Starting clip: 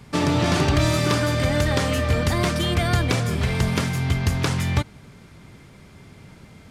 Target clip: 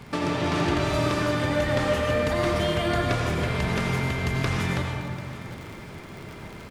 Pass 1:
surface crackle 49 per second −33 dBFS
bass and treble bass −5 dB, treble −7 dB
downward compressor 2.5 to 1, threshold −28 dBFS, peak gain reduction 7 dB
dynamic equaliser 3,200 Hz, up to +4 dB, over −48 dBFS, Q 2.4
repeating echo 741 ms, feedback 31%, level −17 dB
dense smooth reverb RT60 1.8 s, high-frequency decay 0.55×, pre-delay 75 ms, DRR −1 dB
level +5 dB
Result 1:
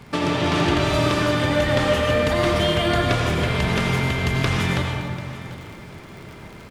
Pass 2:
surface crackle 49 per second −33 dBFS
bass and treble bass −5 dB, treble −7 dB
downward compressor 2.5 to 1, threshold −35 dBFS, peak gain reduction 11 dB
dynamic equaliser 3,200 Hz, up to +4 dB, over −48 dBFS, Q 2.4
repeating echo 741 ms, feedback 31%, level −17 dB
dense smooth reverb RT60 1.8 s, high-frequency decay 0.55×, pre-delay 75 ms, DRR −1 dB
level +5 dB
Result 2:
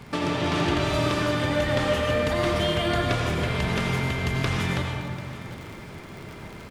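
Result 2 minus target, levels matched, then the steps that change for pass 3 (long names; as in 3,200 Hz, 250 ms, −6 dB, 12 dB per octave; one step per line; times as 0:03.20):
4,000 Hz band +2.5 dB
change: dynamic equaliser 12,000 Hz, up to +4 dB, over −48 dBFS, Q 2.4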